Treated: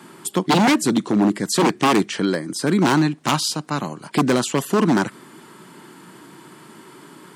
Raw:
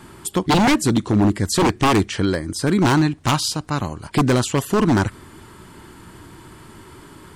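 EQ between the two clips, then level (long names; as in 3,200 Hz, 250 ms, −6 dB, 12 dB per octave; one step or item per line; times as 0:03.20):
Butterworth high-pass 150 Hz 36 dB per octave
0.0 dB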